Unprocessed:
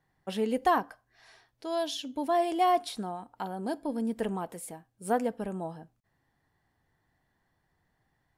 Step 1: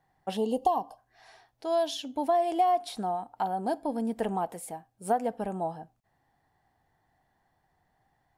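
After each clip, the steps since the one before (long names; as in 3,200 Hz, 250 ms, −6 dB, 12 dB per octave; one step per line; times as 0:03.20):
parametric band 760 Hz +10 dB 0.53 octaves
downward compressor 6 to 1, threshold −22 dBFS, peak gain reduction 10 dB
gain on a spectral selection 0:00.36–0:00.98, 1,200–2,700 Hz −23 dB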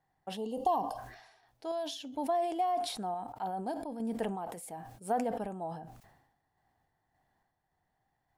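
sample-and-hold tremolo
level that may fall only so fast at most 59 dB per second
level −3.5 dB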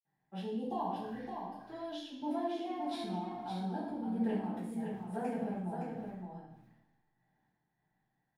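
single-tap delay 565 ms −6 dB
convolution reverb RT60 0.85 s, pre-delay 47 ms
level −2 dB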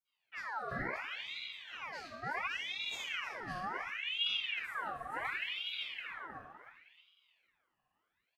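repeating echo 312 ms, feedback 37%, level −9 dB
ring modulator whose carrier an LFO sweeps 2,000 Hz, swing 55%, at 0.7 Hz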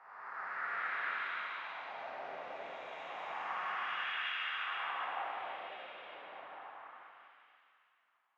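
spectrum smeared in time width 765 ms
LFO wah 0.3 Hz 560–1,500 Hz, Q 2.5
dense smooth reverb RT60 2.1 s, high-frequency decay 1×, DRR −5.5 dB
level +7.5 dB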